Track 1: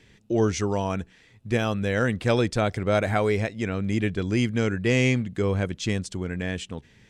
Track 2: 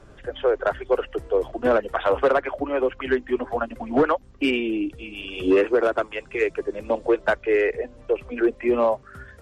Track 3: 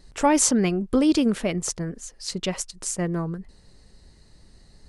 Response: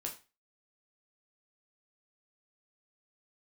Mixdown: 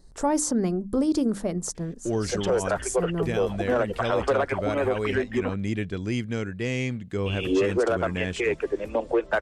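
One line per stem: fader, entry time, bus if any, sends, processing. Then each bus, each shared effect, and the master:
-4.0 dB, 1.75 s, no send, vocal rider within 4 dB 0.5 s
+0.5 dB, 2.05 s, muted 5.54–7.26, no send, dry
-1.5 dB, 0.00 s, no send, bell 2600 Hz -14.5 dB 1.2 oct; notches 50/100/150/200/250/300 Hz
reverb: off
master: limiter -15.5 dBFS, peak gain reduction 8.5 dB

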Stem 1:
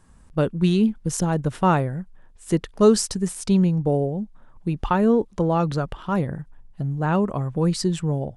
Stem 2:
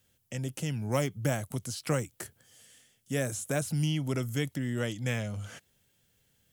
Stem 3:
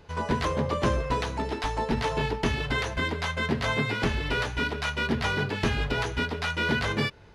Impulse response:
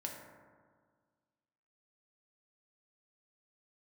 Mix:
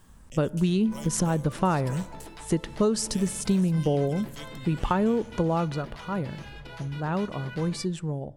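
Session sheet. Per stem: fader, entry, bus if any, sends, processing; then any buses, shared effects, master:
5.38 s -0.5 dB -> 5.83 s -7.5 dB, 0.00 s, send -19.5 dB, dry
-4.5 dB, 0.00 s, send -19.5 dB, resonant high shelf 2400 Hz +8 dB, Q 1.5; auto duck -12 dB, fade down 0.50 s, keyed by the first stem
-13.0 dB, 0.75 s, no send, high shelf 9200 Hz +9 dB; comb 6 ms, depth 51%; limiter -21 dBFS, peak gain reduction 9.5 dB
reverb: on, RT60 1.7 s, pre-delay 3 ms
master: compressor 6:1, threshold -20 dBFS, peak gain reduction 10.5 dB

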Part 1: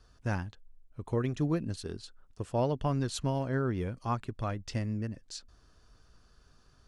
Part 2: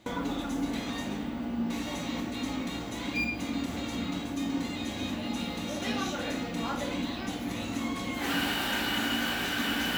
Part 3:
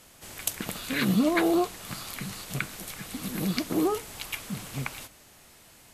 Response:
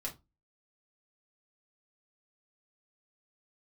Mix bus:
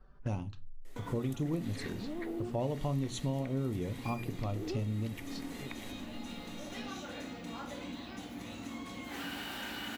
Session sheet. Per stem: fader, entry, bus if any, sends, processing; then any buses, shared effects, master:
+2.5 dB, 0.00 s, send -4.5 dB, low-pass opened by the level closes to 1300 Hz, open at -30.5 dBFS; envelope flanger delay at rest 5.8 ms, full sweep at -30.5 dBFS
-9.5 dB, 0.90 s, no send, dry
-12.0 dB, 0.85 s, no send, compressor, threshold -31 dBFS, peak gain reduction 11.5 dB; small resonant body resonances 390/1900 Hz, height 15 dB, ringing for 20 ms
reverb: on, RT60 0.25 s, pre-delay 4 ms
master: compressor 2:1, threshold -38 dBFS, peak gain reduction 10.5 dB

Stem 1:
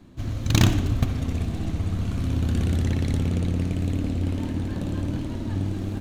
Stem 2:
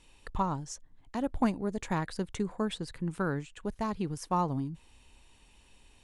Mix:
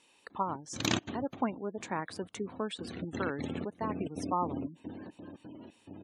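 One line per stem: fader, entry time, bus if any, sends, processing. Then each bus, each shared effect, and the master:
1.08 s -5.5 dB -> 1.48 s -15 dB -> 2.72 s -15 dB -> 3.17 s -4 dB -> 4.6 s -4 dB -> 5.22 s -12.5 dB, 0.30 s, no send, step gate "xxx..xxx.xx." 175 bpm -24 dB
-1.5 dB, 0.00 s, no send, dry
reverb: off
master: HPF 270 Hz 12 dB/oct; spectral gate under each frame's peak -25 dB strong

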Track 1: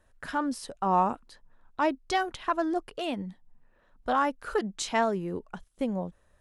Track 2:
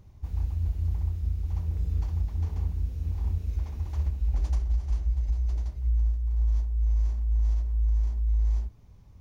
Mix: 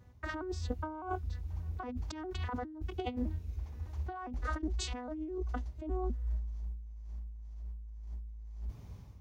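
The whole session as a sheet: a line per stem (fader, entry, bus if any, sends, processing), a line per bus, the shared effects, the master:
-2.0 dB, 0.00 s, no send, arpeggiated vocoder major triad, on B3, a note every 0.203 s
-12.0 dB, 0.00 s, no send, AGC gain up to 11 dB; auto duck -16 dB, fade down 0.60 s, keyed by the first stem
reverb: off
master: HPF 47 Hz 24 dB/oct; negative-ratio compressor -39 dBFS, ratio -1

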